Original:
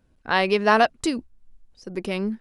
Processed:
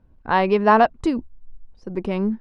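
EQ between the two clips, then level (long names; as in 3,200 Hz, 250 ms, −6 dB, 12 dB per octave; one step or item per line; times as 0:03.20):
low-pass filter 2,900 Hz 6 dB per octave
spectral tilt −2 dB per octave
parametric band 960 Hz +6.5 dB 0.58 octaves
0.0 dB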